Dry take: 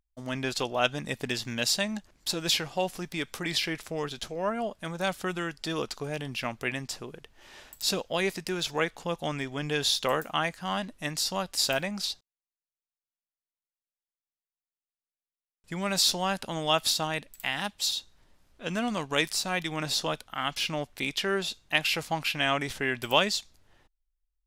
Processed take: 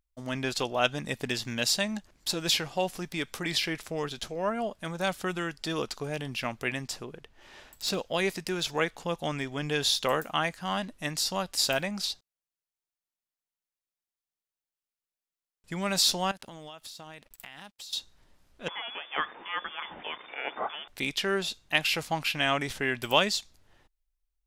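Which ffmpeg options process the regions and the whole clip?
ffmpeg -i in.wav -filter_complex "[0:a]asettb=1/sr,asplit=3[link_01][link_02][link_03];[link_01]atrim=end=7.044[link_04];[link_02]atrim=start=7.04:end=7.98,asetpts=PTS-STARTPTS,afade=type=in:duration=0.004:curve=qsin,afade=type=out:start_time=0.936:duration=0.004:curve=qsin,highshelf=frequency=5700:gain=-7.5,aeval=exprs='0.0794*(abs(mod(val(0)/0.0794+3,4)-2)-1)':channel_layout=same[link_05];[link_03]atrim=start=7.976[link_06];[link_04][link_05]acrossfade=duration=0.004:curve1=hsin:curve2=qsin[link_07];[link_07][link_06]acrossfade=duration=0.004:curve1=qsin:curve2=hsin,asettb=1/sr,asplit=3[link_08][link_09][link_10];[link_08]atrim=end=16.314[link_11];[link_09]atrim=start=16.31:end=17.93,asetpts=PTS-STARTPTS,afade=type=in:duration=0.004:curve=qsin,afade=type=out:start_time=1.616:duration=0.004:curve=qsin,aeval=exprs='sgn(val(0))*max(abs(val(0))-0.00168,0)':channel_layout=same,acompressor=threshold=-41dB:ratio=10:attack=3.2:release=140:knee=1:detection=peak[link_12];[link_10]atrim=start=17.926[link_13];[link_11][link_12]acrossfade=duration=0.004:curve1=hsin:curve2=qsin[link_14];[link_14][link_13]acrossfade=duration=0.004:curve1=qsin:curve2=hsin,asettb=1/sr,asplit=3[link_15][link_16][link_17];[link_15]atrim=end=18.684[link_18];[link_16]atrim=start=18.68:end=20.88,asetpts=PTS-STARTPTS,afade=type=in:duration=0.004:curve=qsin,afade=type=out:start_time=2.196:duration=0.004:curve=qsin,aeval=exprs='val(0)+0.5*0.02*sgn(val(0))':channel_layout=same,lowpass=frequency=3100:width_type=q:width=0.5098,lowpass=frequency=3100:width_type=q:width=0.6013,lowpass=frequency=3100:width_type=q:width=0.9,lowpass=frequency=3100:width_type=q:width=2.563,afreqshift=-3600,acrossover=split=220 2100:gain=0.158 1 0.0794[link_19][link_20][link_21];[link_19][link_20][link_21]amix=inputs=3:normalize=0[link_22];[link_17]atrim=start=20.876[link_23];[link_18][link_22]acrossfade=duration=0.004:curve1=hsin:curve2=qsin[link_24];[link_24][link_23]acrossfade=duration=0.004:curve1=qsin:curve2=hsin" out.wav

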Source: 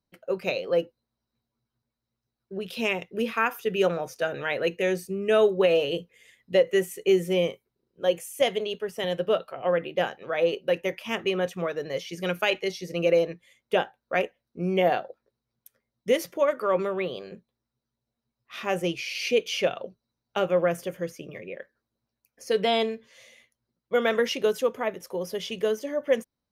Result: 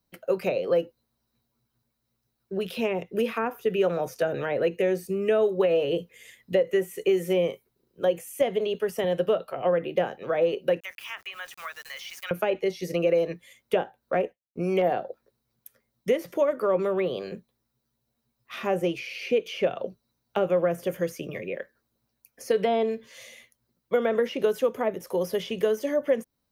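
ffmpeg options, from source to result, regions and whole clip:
ffmpeg -i in.wav -filter_complex "[0:a]asettb=1/sr,asplit=3[link_01][link_02][link_03];[link_01]atrim=end=10.804[link_04];[link_02]atrim=start=10.8:end=12.31,asetpts=PTS-STARTPTS,afade=type=in:duration=0.004:curve=qsin,afade=type=out:start_time=1.506:duration=0.004:curve=qsin,highpass=frequency=1200:width=0.5412,highpass=frequency=1200:width=1.3066,aeval=exprs='val(0)*gte(abs(val(0)),0.00316)':channel_layout=same[link_05];[link_03]atrim=start=12.306[link_06];[link_04][link_05]acrossfade=duration=0.004:curve1=hsin:curve2=qsin[link_07];[link_07][link_06]acrossfade=duration=0.004:curve1=qsin:curve2=hsin,asettb=1/sr,asplit=3[link_08][link_09][link_10];[link_08]atrim=end=14.244[link_11];[link_09]atrim=start=14.24:end=14.82,asetpts=PTS-STARTPTS,afade=type=in:duration=0.004:curve=qsin,afade=type=out:start_time=0.576:duration=0.004:curve=qsin,agate=range=-33dB:threshold=-50dB:ratio=3:release=100:detection=peak,asoftclip=type=hard:threshold=-16dB[link_12];[link_10]atrim=start=14.816[link_13];[link_11][link_12]acrossfade=duration=0.004:curve1=hsin:curve2=qsin[link_14];[link_14][link_13]acrossfade=duration=0.004:curve1=qsin:curve2=hsin,acrossover=split=2800[link_15][link_16];[link_16]acompressor=threshold=-48dB:ratio=4:attack=1:release=60[link_17];[link_15][link_17]amix=inputs=2:normalize=0,highshelf=frequency=11000:gain=11,acrossover=split=360|730[link_18][link_19][link_20];[link_18]acompressor=threshold=-37dB:ratio=4[link_21];[link_19]acompressor=threshold=-29dB:ratio=4[link_22];[link_20]acompressor=threshold=-41dB:ratio=4[link_23];[link_21][link_22][link_23]amix=inputs=3:normalize=0,volume=5.5dB" out.wav

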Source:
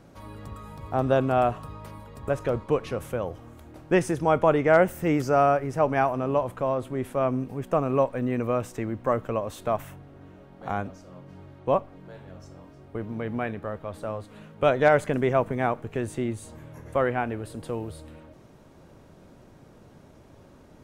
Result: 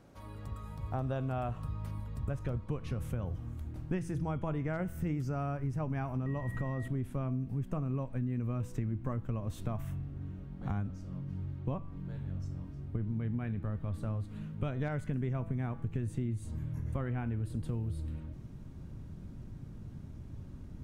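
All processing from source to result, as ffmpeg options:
ffmpeg -i in.wav -filter_complex "[0:a]asettb=1/sr,asplit=3[link_01][link_02][link_03];[link_01]atrim=end=6.264[link_04];[link_02]atrim=start=6.26:end=6.88,asetpts=PTS-STARTPTS,afade=type=in:duration=0.004:curve=qsin,afade=type=out:start_time=0.616:duration=0.004:curve=qsin,highshelf=frequency=8500:gain=5.5,acompressor=mode=upward:threshold=-28dB:ratio=2.5:attack=3.2:release=140:knee=2.83:detection=peak,aeval=exprs='val(0)+0.0178*sin(2*PI*1900*n/s)':channel_layout=same[link_05];[link_03]atrim=start=6.876[link_06];[link_04][link_05]acrossfade=duration=0.004:curve1=hsin:curve2=qsin[link_07];[link_07][link_06]acrossfade=duration=0.004:curve1=qsin:curve2=hsin,bandreject=frequency=165.1:width_type=h:width=4,bandreject=frequency=330.2:width_type=h:width=4,bandreject=frequency=495.3:width_type=h:width=4,bandreject=frequency=660.4:width_type=h:width=4,bandreject=frequency=825.5:width_type=h:width=4,bandreject=frequency=990.6:width_type=h:width=4,bandreject=frequency=1155.7:width_type=h:width=4,bandreject=frequency=1320.8:width_type=h:width=4,bandreject=frequency=1485.9:width_type=h:width=4,bandreject=frequency=1651:width_type=h:width=4,bandreject=frequency=1816.1:width_type=h:width=4,bandreject=frequency=1981.2:width_type=h:width=4,bandreject=frequency=2146.3:width_type=h:width=4,bandreject=frequency=2311.4:width_type=h:width=4,bandreject=frequency=2476.5:width_type=h:width=4,bandreject=frequency=2641.6:width_type=h:width=4,bandreject=frequency=2806.7:width_type=h:width=4,bandreject=frequency=2971.8:width_type=h:width=4,bandreject=frequency=3136.9:width_type=h:width=4,bandreject=frequency=3302:width_type=h:width=4,bandreject=frequency=3467.1:width_type=h:width=4,bandreject=frequency=3632.2:width_type=h:width=4,bandreject=frequency=3797.3:width_type=h:width=4,bandreject=frequency=3962.4:width_type=h:width=4,bandreject=frequency=4127.5:width_type=h:width=4,bandreject=frequency=4292.6:width_type=h:width=4,bandreject=frequency=4457.7:width_type=h:width=4,bandreject=frequency=4622.8:width_type=h:width=4,bandreject=frequency=4787.9:width_type=h:width=4,bandreject=frequency=4953:width_type=h:width=4,bandreject=frequency=5118.1:width_type=h:width=4,bandreject=frequency=5283.2:width_type=h:width=4,bandreject=frequency=5448.3:width_type=h:width=4,bandreject=frequency=5613.4:width_type=h:width=4,bandreject=frequency=5778.5:width_type=h:width=4,bandreject=frequency=5943.6:width_type=h:width=4,asubboost=boost=9:cutoff=180,acompressor=threshold=-25dB:ratio=6,volume=-6.5dB" out.wav

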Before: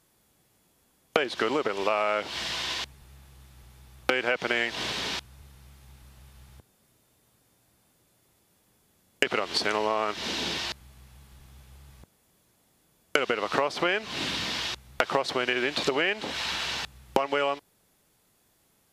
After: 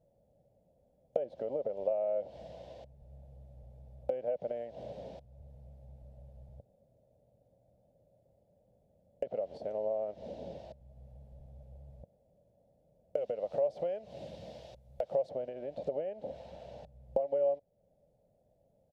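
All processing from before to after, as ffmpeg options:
ffmpeg -i in.wav -filter_complex "[0:a]asettb=1/sr,asplit=3[link_01][link_02][link_03];[link_01]atrim=end=13.174[link_04];[link_02]atrim=start=13.17:end=15.29,asetpts=PTS-STARTPTS,afade=type=in:duration=0.004:curve=qsin,afade=type=out:start_time=2.116:duration=0.004:curve=qsin,highshelf=frequency=2200:gain=9.5,bandreject=frequency=260:width=7.2[link_05];[link_03]atrim=start=15.286[link_06];[link_04][link_05]acrossfade=duration=0.004:curve1=hsin:curve2=qsin[link_07];[link_07][link_06]acrossfade=duration=0.004:curve1=qsin:curve2=hsin,equalizer=frequency=2700:width=0.35:gain=3,acompressor=threshold=-47dB:ratio=1.5,firequalizer=gain_entry='entry(160,0);entry(360,-11);entry(560,11);entry(1100,-30)':delay=0.05:min_phase=1" out.wav

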